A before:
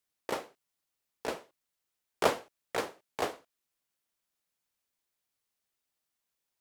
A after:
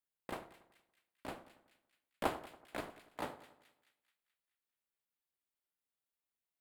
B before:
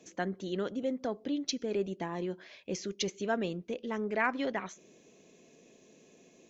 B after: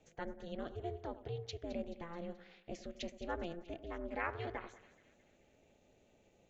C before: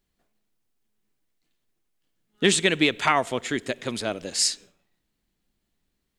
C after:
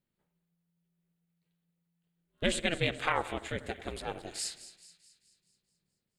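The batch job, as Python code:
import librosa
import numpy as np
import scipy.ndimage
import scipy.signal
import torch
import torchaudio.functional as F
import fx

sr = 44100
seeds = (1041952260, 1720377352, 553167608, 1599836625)

y = fx.peak_eq(x, sr, hz=5800.0, db=-10.0, octaves=0.62)
y = y * np.sin(2.0 * np.pi * 170.0 * np.arange(len(y)) / sr)
y = fx.echo_split(y, sr, split_hz=1800.0, low_ms=94, high_ms=215, feedback_pct=52, wet_db=-14.5)
y = F.gain(torch.from_numpy(y), -6.0).numpy()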